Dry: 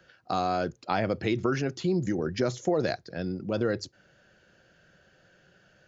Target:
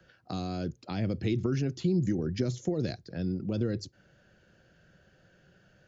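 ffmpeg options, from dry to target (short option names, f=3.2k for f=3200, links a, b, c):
-filter_complex "[0:a]lowshelf=f=290:g=8.5,acrossover=split=400|2400[a][b][c];[b]acompressor=threshold=-40dB:ratio=6[d];[a][d][c]amix=inputs=3:normalize=0,volume=-4dB"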